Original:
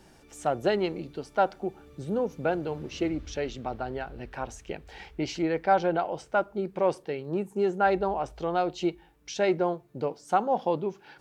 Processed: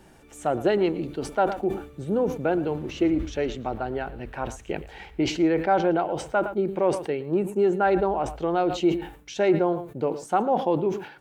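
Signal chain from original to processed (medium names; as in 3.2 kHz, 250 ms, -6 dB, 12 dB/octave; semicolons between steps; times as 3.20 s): delay 113 ms -19 dB; dynamic bell 330 Hz, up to +5 dB, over -40 dBFS, Q 2.3; in parallel at -1 dB: peak limiter -18.5 dBFS, peak gain reduction 9 dB; on the sum: peaking EQ 5.1 kHz -7.5 dB 0.71 oct; decay stretcher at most 110 dB/s; trim -2.5 dB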